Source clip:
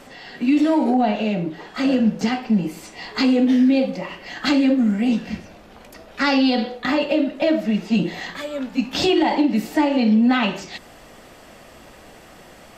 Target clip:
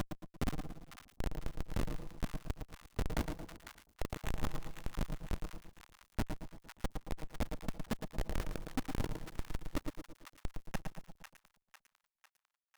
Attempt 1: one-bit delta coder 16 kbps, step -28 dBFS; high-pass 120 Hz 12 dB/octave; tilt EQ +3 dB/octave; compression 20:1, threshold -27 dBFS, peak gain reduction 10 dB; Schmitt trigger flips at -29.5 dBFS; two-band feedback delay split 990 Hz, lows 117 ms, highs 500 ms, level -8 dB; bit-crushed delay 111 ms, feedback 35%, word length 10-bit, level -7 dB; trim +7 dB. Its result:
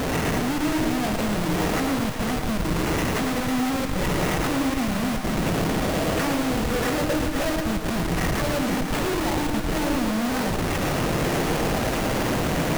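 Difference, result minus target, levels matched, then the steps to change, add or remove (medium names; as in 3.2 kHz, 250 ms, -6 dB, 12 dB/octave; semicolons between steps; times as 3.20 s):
compression: peak gain reduction -7 dB
change: compression 20:1, threshold -34.5 dBFS, peak gain reduction 17.5 dB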